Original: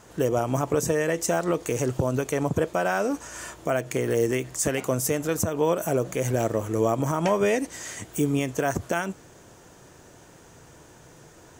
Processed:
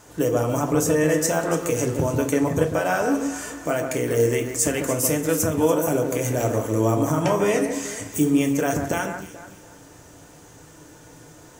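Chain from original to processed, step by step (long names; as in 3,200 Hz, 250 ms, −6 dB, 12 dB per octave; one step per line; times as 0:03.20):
high-shelf EQ 6,500 Hz +6 dB
delay that swaps between a low-pass and a high-pass 144 ms, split 2,200 Hz, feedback 55%, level −6.5 dB
feedback delay network reverb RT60 0.41 s, low-frequency decay 1.35×, high-frequency decay 0.8×, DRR 4.5 dB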